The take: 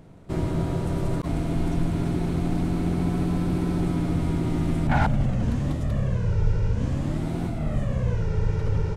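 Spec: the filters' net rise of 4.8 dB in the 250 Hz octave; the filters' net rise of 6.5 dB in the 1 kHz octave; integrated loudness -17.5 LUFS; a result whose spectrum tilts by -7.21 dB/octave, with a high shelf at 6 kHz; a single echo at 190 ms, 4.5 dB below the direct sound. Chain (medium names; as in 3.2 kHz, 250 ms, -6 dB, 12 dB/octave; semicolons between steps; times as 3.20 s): peaking EQ 250 Hz +6.5 dB; peaking EQ 1 kHz +8 dB; treble shelf 6 kHz +5 dB; delay 190 ms -4.5 dB; trim +4 dB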